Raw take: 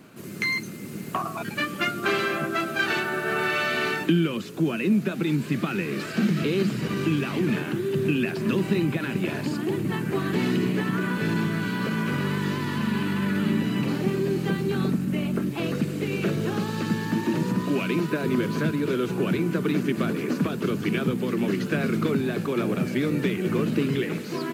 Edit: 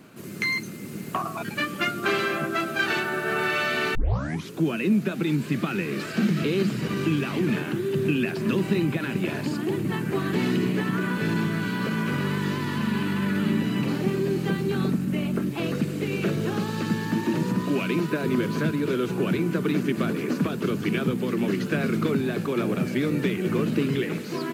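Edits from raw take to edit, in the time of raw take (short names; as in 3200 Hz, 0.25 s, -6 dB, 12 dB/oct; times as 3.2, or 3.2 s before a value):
3.95 tape start 0.55 s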